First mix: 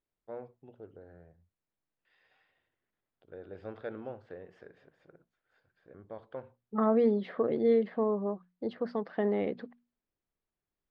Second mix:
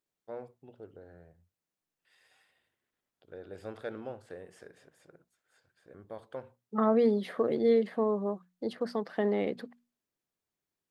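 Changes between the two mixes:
second voice: add high-pass 97 Hz 24 dB/octave; master: remove distance through air 260 m

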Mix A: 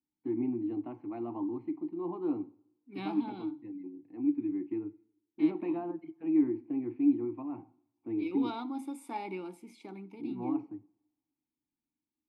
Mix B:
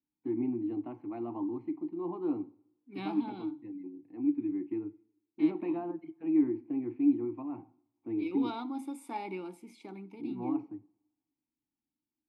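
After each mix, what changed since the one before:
no change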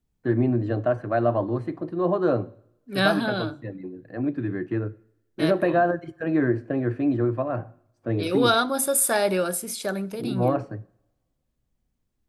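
master: remove vowel filter u

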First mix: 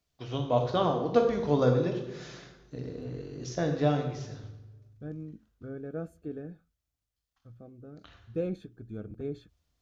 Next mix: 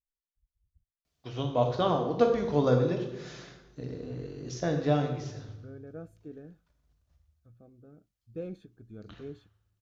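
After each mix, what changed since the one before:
first voice: entry +1.05 s; second voice -6.5 dB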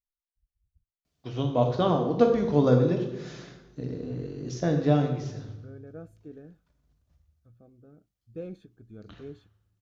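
first voice: add peaking EQ 210 Hz +6 dB 2.1 oct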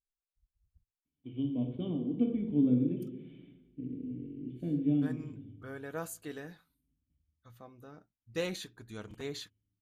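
first voice: add cascade formant filter i; second voice: remove boxcar filter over 45 samples

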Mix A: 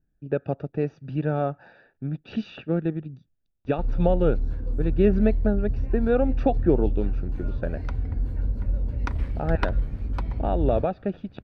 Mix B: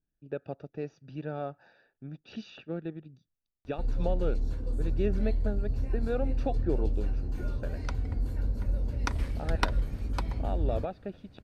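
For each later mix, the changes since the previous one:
speech -9.5 dB; master: add tone controls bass -4 dB, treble +13 dB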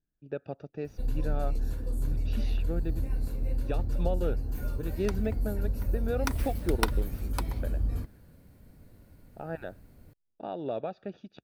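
background: entry -2.80 s; master: remove low-pass 5.6 kHz 12 dB/octave

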